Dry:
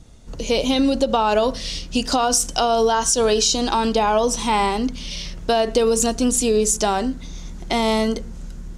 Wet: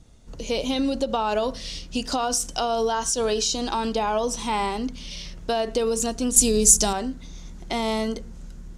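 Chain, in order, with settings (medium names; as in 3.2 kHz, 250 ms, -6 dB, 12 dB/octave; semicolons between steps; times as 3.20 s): 6.36–6.93 s: tone controls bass +9 dB, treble +13 dB; trim -6 dB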